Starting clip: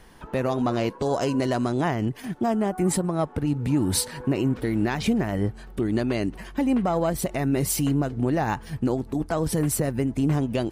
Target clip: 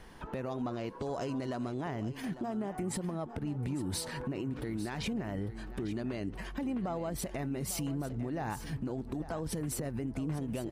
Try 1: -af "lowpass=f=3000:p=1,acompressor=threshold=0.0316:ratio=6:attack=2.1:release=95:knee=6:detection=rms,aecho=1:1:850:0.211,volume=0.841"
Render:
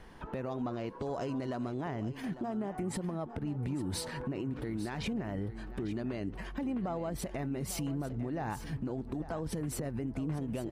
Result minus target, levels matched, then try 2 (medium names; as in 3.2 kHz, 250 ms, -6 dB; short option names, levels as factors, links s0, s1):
8 kHz band -3.0 dB
-af "lowpass=f=6700:p=1,acompressor=threshold=0.0316:ratio=6:attack=2.1:release=95:knee=6:detection=rms,aecho=1:1:850:0.211,volume=0.841"